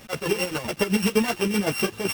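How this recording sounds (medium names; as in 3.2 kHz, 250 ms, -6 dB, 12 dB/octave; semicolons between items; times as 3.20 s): a buzz of ramps at a fixed pitch in blocks of 16 samples; chopped level 7.8 Hz, depth 65%, duty 45%; a quantiser's noise floor 8-bit, dither none; a shimmering, thickened sound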